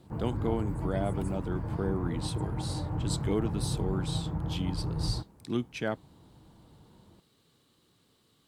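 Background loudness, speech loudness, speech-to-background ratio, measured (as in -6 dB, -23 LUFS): -34.5 LUFS, -35.5 LUFS, -1.0 dB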